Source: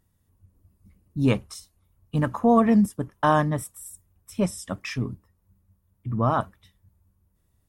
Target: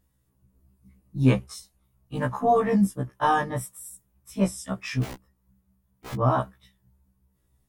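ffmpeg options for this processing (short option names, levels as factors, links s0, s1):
-filter_complex "[0:a]asettb=1/sr,asplit=3[s0][s1][s2];[s0]atrim=end=5.034[s3];[s1]atrim=start=5.03:end=6.14,asetpts=PTS-STARTPTS,afade=t=in:d=0.004:c=qsin,afade=t=out:st=1.106:d=0.004:c=qsin,aeval=exprs='(mod(42.2*val(0)+1,2)-1)/42.2':c=same[s4];[s2]atrim=start=6.136[s5];[s3][s4]acrossfade=d=0.004:c1=hsin:c2=qsin[s6];[s6][s5]acrossfade=d=0.004:c1=qsin:c2=hsin,afftfilt=real='re*1.73*eq(mod(b,3),0)':imag='im*1.73*eq(mod(b,3),0)':win_size=2048:overlap=0.75,volume=1.26"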